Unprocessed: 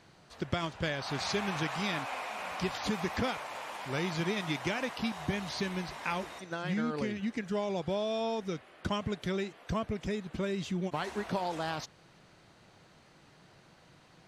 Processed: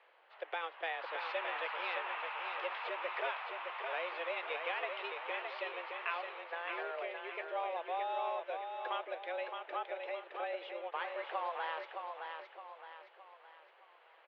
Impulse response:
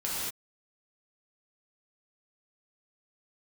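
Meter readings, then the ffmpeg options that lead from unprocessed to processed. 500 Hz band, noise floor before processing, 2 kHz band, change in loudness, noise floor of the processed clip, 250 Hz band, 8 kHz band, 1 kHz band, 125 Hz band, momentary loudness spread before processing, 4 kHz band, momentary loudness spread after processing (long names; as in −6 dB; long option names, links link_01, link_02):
−5.0 dB, −60 dBFS, −1.5 dB, −5.0 dB, −63 dBFS, −24.5 dB, below −35 dB, −0.5 dB, below −40 dB, 5 LU, −7.5 dB, 8 LU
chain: -af "highpass=frequency=310:width_type=q:width=0.5412,highpass=frequency=310:width_type=q:width=1.307,lowpass=frequency=2900:width_type=q:width=0.5176,lowpass=frequency=2900:width_type=q:width=0.7071,lowpass=frequency=2900:width_type=q:width=1.932,afreqshift=170,aecho=1:1:616|1232|1848|2464|3080:0.531|0.228|0.0982|0.0422|0.0181,crystalizer=i=1.5:c=0,volume=-4.5dB"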